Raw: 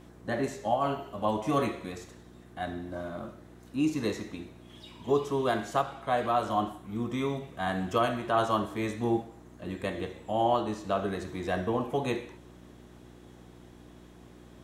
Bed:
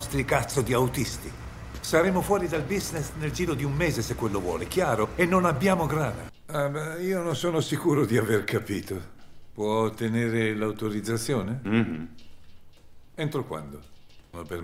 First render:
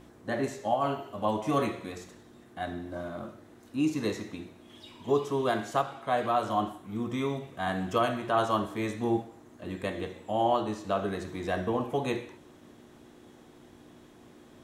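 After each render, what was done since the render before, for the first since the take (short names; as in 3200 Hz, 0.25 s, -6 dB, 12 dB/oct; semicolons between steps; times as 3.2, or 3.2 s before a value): de-hum 60 Hz, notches 3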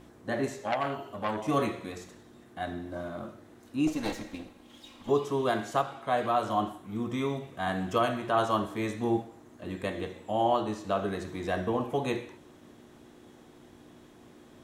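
0.56–1.48 core saturation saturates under 1700 Hz; 3.87–5.09 minimum comb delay 3.7 ms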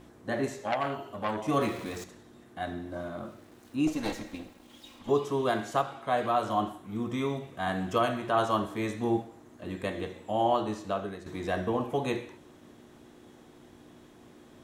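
1.61–2.04 zero-crossing step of -41 dBFS; 3.25–4.99 sample gate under -57 dBFS; 10.78–11.26 fade out, to -11 dB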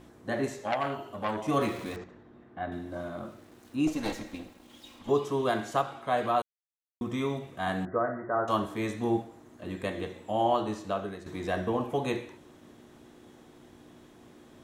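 1.96–2.72 LPF 2000 Hz; 6.42–7.01 mute; 7.85–8.48 rippled Chebyshev low-pass 2000 Hz, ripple 6 dB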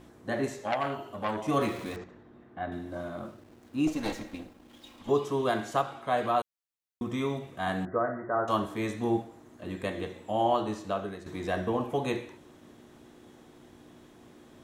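3.27–4.98 backlash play -54 dBFS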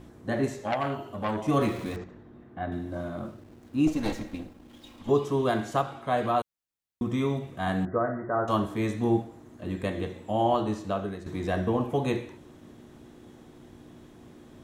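low shelf 270 Hz +8 dB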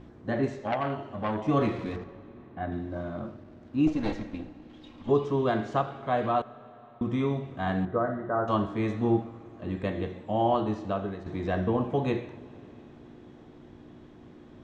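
air absorption 150 m; digital reverb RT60 4.3 s, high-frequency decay 0.85×, pre-delay 40 ms, DRR 19 dB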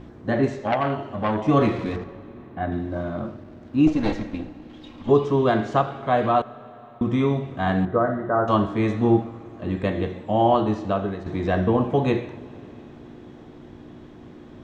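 gain +6.5 dB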